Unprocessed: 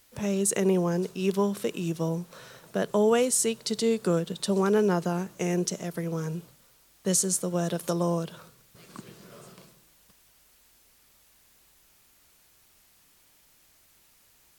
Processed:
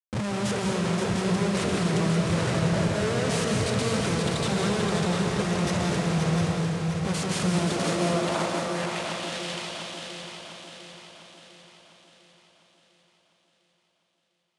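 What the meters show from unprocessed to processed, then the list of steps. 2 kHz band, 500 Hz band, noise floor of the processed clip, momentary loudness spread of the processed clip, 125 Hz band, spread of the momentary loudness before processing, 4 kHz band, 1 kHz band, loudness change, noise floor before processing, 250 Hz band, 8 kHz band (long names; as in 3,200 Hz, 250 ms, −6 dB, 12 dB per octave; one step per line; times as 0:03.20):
+9.0 dB, −1.0 dB, −73 dBFS, 11 LU, +6.5 dB, 12 LU, +7.5 dB, +5.5 dB, +1.0 dB, −62 dBFS, +2.5 dB, −4.0 dB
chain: stylus tracing distortion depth 0.45 ms
dynamic equaliser 300 Hz, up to −4 dB, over −39 dBFS, Q 1.5
brickwall limiter −22.5 dBFS, peak gain reduction 10 dB
comparator with hysteresis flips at −46 dBFS
high-pass filter sweep 100 Hz → 3,200 Hz, 0:07.32–0:09.12
Butterworth low-pass 10,000 Hz 48 dB per octave
feedback echo with a long and a short gap by turns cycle 701 ms, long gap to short 3 to 1, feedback 49%, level −5.5 dB
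comb and all-pass reverb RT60 1.5 s, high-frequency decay 0.9×, pre-delay 115 ms, DRR 1 dB
level +5 dB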